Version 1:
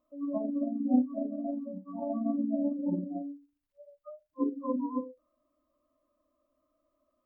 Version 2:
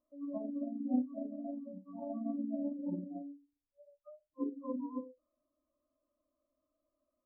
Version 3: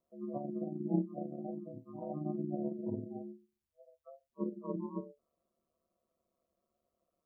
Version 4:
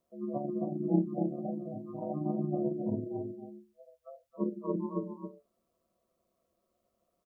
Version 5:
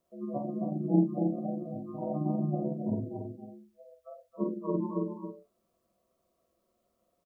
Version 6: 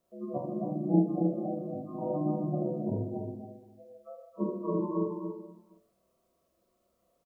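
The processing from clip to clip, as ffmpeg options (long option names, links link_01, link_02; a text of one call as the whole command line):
ffmpeg -i in.wav -af "lowpass=1000,volume=-7dB" out.wav
ffmpeg -i in.wav -af "aeval=exprs='val(0)*sin(2*PI*73*n/s)':channel_layout=same,volume=3dB" out.wav
ffmpeg -i in.wav -af "aecho=1:1:271:0.447,volume=4.5dB" out.wav
ffmpeg -i in.wav -filter_complex "[0:a]asplit=2[link_01][link_02];[link_02]adelay=46,volume=-4dB[link_03];[link_01][link_03]amix=inputs=2:normalize=0,volume=1dB" out.wav
ffmpeg -i in.wav -af "aecho=1:1:30|78|154.8|277.7|474.3:0.631|0.398|0.251|0.158|0.1" out.wav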